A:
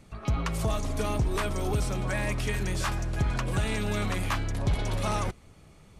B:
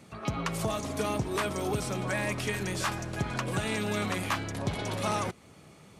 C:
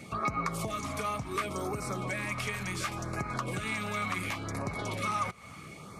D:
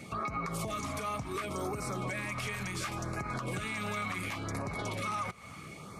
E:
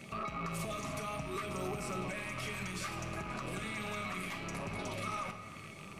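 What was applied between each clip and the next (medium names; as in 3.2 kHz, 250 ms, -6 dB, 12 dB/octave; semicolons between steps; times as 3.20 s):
in parallel at -2 dB: compression, threshold -35 dBFS, peak gain reduction 12.5 dB; on the sum: high-pass 140 Hz 12 dB/octave; trim -1.5 dB
compression 5:1, threshold -39 dBFS, peak gain reduction 13.5 dB; small resonant body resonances 1.2/2.2 kHz, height 13 dB, ringing for 25 ms; LFO notch sine 0.7 Hz 300–3400 Hz; trim +6 dB
peak limiter -26.5 dBFS, peak gain reduction 9 dB
rattle on loud lows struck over -46 dBFS, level -34 dBFS; feedback comb 650 Hz, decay 0.33 s, mix 70%; reverberation RT60 2.0 s, pre-delay 5 ms, DRR 5.5 dB; trim +5.5 dB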